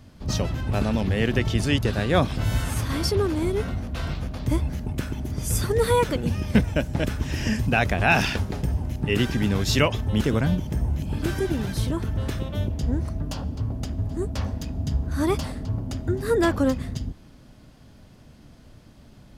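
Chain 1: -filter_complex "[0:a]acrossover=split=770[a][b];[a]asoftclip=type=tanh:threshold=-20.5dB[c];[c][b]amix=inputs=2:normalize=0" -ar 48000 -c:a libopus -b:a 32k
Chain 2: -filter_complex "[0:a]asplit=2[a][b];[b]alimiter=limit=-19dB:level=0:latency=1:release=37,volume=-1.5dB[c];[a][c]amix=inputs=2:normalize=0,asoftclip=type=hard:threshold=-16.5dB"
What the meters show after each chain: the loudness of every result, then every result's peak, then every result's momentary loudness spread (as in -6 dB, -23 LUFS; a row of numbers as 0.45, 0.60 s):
-27.5, -23.0 LUFS; -8.0, -16.5 dBFS; 8, 5 LU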